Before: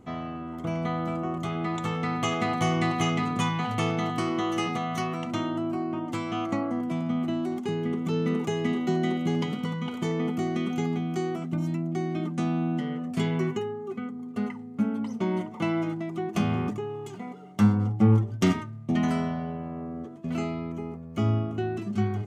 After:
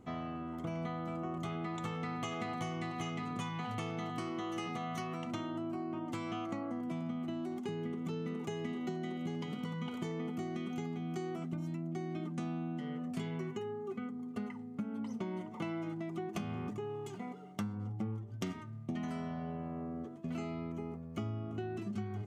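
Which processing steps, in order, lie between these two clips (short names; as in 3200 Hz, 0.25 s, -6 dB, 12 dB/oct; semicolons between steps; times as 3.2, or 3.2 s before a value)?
compressor 12:1, threshold -30 dBFS, peak gain reduction 16 dB; gain -5 dB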